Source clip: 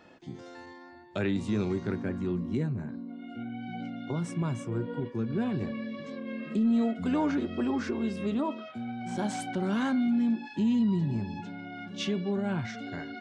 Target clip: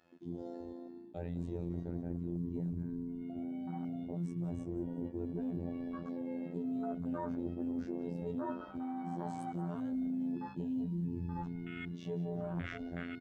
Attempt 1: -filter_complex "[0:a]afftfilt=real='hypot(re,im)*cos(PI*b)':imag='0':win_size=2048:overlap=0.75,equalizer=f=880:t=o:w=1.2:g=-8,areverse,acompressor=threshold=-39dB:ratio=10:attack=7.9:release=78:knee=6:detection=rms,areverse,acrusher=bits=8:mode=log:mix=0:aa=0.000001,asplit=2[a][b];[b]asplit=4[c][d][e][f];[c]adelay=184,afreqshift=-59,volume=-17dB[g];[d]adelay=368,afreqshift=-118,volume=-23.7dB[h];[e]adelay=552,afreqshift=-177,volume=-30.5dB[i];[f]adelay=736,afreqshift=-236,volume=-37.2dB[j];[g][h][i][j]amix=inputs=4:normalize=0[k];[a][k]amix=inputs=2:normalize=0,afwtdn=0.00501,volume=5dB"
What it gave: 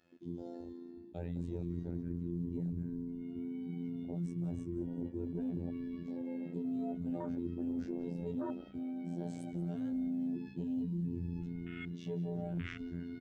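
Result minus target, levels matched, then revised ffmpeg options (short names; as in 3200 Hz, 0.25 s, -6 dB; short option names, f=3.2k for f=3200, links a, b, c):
1000 Hz band -8.5 dB
-filter_complex "[0:a]afftfilt=real='hypot(re,im)*cos(PI*b)':imag='0':win_size=2048:overlap=0.75,areverse,acompressor=threshold=-39dB:ratio=10:attack=7.9:release=78:knee=6:detection=rms,areverse,acrusher=bits=8:mode=log:mix=0:aa=0.000001,asplit=2[a][b];[b]asplit=4[c][d][e][f];[c]adelay=184,afreqshift=-59,volume=-17dB[g];[d]adelay=368,afreqshift=-118,volume=-23.7dB[h];[e]adelay=552,afreqshift=-177,volume=-30.5dB[i];[f]adelay=736,afreqshift=-236,volume=-37.2dB[j];[g][h][i][j]amix=inputs=4:normalize=0[k];[a][k]amix=inputs=2:normalize=0,afwtdn=0.00501,volume=5dB"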